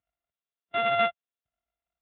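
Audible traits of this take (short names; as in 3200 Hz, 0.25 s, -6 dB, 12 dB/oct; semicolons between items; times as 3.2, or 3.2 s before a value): a buzz of ramps at a fixed pitch in blocks of 64 samples; Speex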